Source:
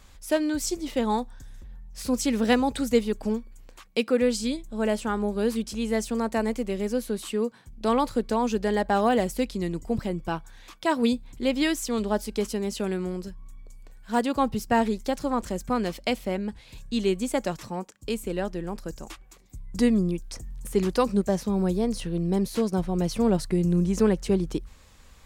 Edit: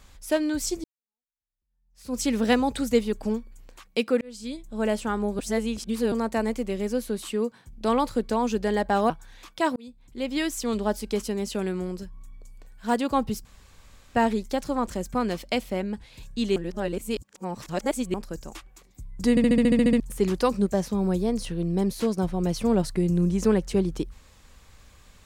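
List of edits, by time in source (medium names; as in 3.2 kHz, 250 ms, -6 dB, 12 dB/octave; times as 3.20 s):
0.84–2.20 s: fade in exponential
4.21–4.80 s: fade in
5.39–6.12 s: reverse
9.10–10.35 s: delete
11.01–11.88 s: fade in
14.70 s: insert room tone 0.70 s
17.11–18.69 s: reverse
19.85 s: stutter in place 0.07 s, 10 plays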